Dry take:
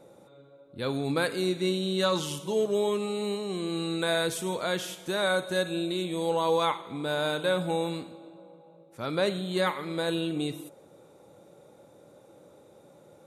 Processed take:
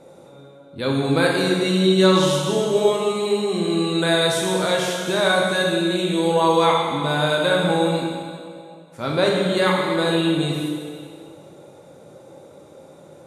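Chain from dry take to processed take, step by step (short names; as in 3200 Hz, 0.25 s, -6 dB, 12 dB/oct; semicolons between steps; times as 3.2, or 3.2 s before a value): LPF 11000 Hz 12 dB/oct; plate-style reverb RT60 2 s, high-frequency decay 0.95×, DRR -1.5 dB; gain +6 dB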